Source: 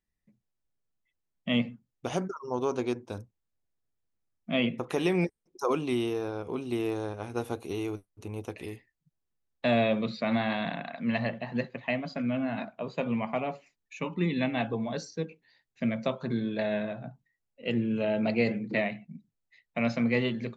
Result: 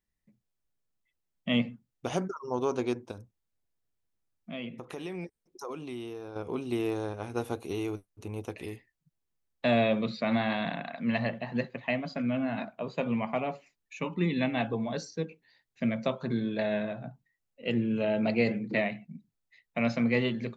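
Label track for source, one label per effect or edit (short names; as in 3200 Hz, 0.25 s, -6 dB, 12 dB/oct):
3.110000	6.360000	compressor 2:1, threshold -44 dBFS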